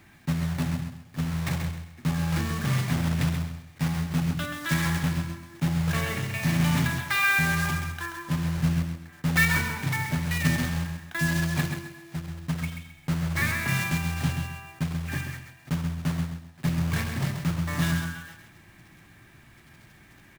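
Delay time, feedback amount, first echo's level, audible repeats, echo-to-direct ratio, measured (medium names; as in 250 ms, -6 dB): 132 ms, 26%, -7.0 dB, 3, -6.5 dB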